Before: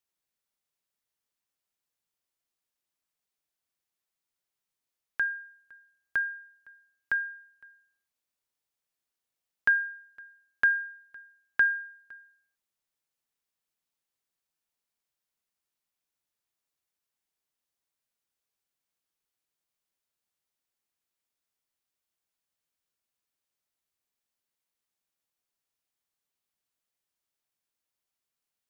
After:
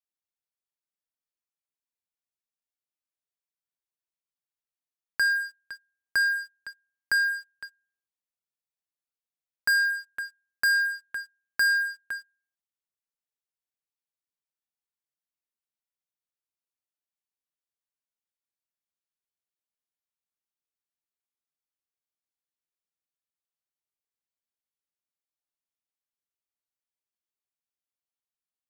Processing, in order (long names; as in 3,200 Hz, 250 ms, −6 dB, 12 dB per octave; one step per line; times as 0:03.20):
leveller curve on the samples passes 5
in parallel at −3.5 dB: gain into a clipping stage and back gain 31 dB
on the sum: level −6 dB